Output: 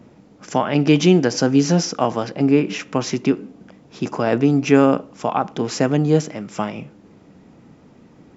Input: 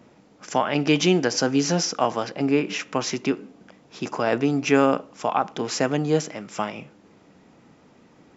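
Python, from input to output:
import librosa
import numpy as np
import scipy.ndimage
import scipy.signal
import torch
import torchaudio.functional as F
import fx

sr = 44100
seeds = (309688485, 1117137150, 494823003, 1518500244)

y = fx.low_shelf(x, sr, hz=390.0, db=9.5)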